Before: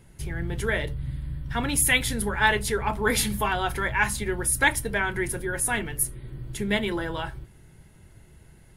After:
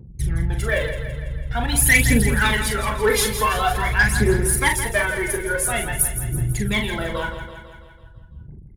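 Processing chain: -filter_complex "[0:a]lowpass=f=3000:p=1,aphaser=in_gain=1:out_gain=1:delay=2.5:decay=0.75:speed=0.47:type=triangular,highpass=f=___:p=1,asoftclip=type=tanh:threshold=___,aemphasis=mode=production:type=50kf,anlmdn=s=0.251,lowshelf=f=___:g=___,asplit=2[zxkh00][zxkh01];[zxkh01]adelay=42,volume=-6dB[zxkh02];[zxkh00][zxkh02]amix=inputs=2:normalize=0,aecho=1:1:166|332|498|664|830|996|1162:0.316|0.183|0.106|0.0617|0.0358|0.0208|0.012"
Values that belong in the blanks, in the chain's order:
52, -9.5dB, 400, 3.5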